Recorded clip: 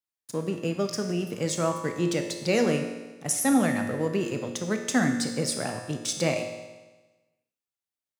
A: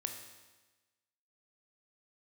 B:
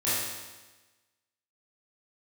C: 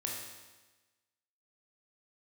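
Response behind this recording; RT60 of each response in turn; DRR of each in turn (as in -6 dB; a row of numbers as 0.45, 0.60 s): A; 1.2, 1.2, 1.2 s; 4.5, -12.0, -2.0 dB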